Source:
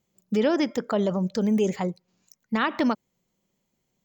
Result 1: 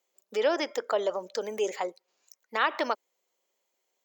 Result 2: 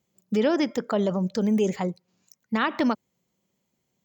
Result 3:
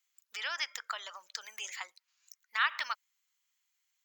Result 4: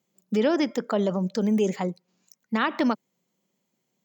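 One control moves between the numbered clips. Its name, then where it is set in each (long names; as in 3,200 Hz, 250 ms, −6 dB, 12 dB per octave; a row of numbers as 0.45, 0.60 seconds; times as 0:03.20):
high-pass filter, corner frequency: 430, 53, 1,300, 150 Hertz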